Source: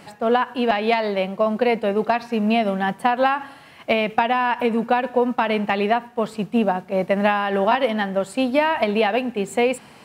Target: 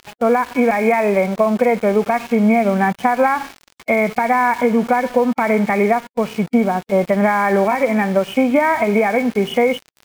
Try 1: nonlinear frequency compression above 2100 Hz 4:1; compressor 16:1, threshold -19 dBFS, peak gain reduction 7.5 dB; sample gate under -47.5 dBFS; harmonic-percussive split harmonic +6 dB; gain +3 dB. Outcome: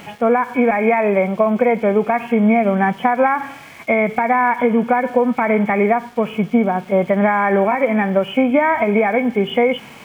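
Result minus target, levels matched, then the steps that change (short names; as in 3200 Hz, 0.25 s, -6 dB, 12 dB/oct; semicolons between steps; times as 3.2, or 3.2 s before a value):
sample gate: distortion -14 dB
change: sample gate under -36.5 dBFS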